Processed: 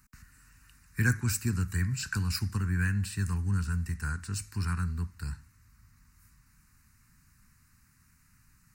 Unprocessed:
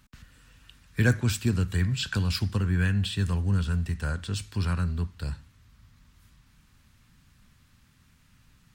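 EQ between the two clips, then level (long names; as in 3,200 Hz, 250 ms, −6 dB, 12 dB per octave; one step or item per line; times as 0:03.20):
high-shelf EQ 2,200 Hz +8.5 dB
phaser with its sweep stopped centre 1,400 Hz, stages 4
−3.5 dB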